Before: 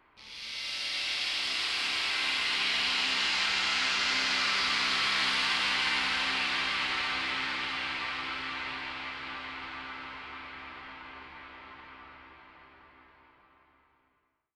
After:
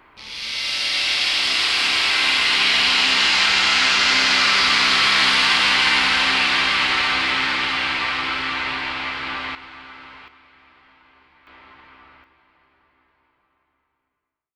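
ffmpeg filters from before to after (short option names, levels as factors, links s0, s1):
-af "asetnsamples=n=441:p=0,asendcmd='9.55 volume volume 1dB;10.28 volume volume -8dB;11.47 volume volume 1.5dB;12.24 volume volume -5.5dB',volume=3.98"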